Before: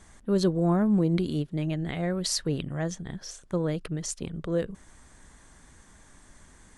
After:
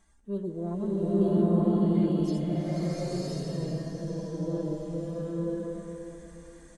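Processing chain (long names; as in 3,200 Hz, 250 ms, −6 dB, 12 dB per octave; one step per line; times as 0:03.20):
harmonic-percussive split with one part muted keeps harmonic
parametric band 150 Hz −2.5 dB 0.39 octaves
tuned comb filter 67 Hz, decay 1.8 s, harmonics all, mix 70%
repeating echo 480 ms, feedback 40%, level −11 dB
slow-attack reverb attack 1,020 ms, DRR −10 dB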